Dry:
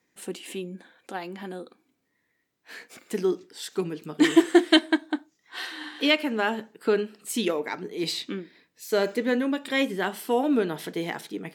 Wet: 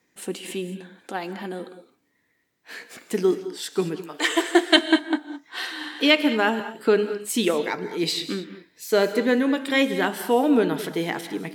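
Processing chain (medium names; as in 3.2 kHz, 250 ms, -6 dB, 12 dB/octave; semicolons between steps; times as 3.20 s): 3.95–4.76 s: high-pass 660 Hz -> 330 Hz 24 dB/octave; gated-style reverb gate 240 ms rising, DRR 11.5 dB; trim +4 dB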